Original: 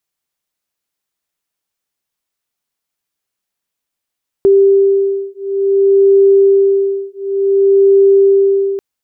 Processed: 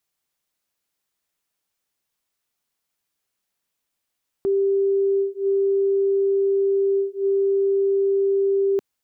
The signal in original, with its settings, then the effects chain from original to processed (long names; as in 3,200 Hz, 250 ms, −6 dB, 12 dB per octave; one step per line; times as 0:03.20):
two tones that beat 393 Hz, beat 0.56 Hz, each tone −10.5 dBFS 4.34 s
dynamic equaliser 220 Hz, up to +5 dB, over −26 dBFS, Q 0.92
downward compressor, threshold −16 dBFS
brickwall limiter −16.5 dBFS